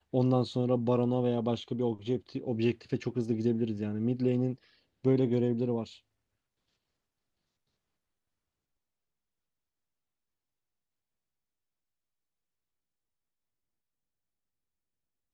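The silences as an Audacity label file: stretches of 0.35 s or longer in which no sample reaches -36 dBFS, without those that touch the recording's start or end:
4.540000	5.050000	silence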